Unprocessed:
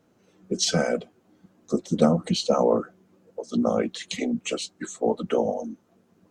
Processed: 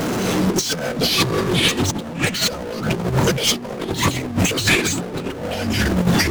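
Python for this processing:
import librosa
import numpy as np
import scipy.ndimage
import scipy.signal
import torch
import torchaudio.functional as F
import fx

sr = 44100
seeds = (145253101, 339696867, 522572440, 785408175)

y = fx.power_curve(x, sr, exponent=0.35)
y = fx.echo_pitch(y, sr, ms=250, semitones=-5, count=3, db_per_echo=-3.0)
y = fx.over_compress(y, sr, threshold_db=-19.0, ratio=-0.5)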